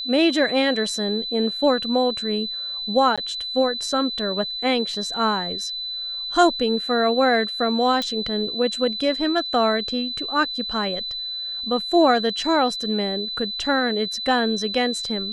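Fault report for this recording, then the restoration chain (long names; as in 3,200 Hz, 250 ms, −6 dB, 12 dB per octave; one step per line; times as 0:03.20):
whistle 4,000 Hz −27 dBFS
0:03.16–0:03.18: drop-out 16 ms
0:08.02: click −12 dBFS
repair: click removal
notch filter 4,000 Hz, Q 30
repair the gap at 0:03.16, 16 ms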